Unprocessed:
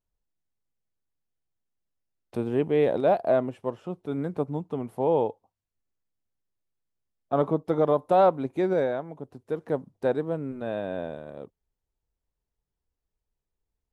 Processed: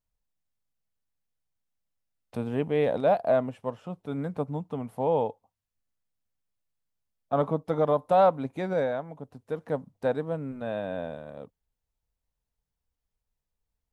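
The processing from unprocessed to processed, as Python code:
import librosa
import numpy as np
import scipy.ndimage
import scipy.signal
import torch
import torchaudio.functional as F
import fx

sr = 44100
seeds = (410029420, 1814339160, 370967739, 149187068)

y = fx.peak_eq(x, sr, hz=360.0, db=-12.0, octaves=0.33)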